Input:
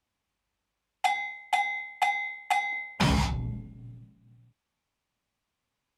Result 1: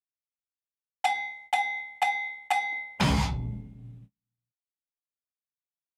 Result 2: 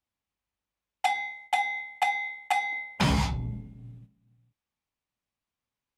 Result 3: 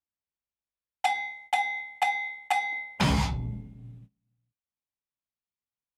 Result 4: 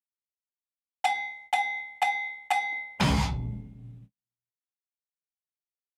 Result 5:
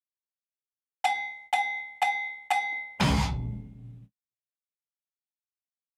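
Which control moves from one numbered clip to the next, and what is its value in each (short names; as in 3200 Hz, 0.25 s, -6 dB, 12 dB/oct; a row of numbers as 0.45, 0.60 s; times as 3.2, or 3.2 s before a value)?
gate, range: -32, -8, -20, -45, -59 dB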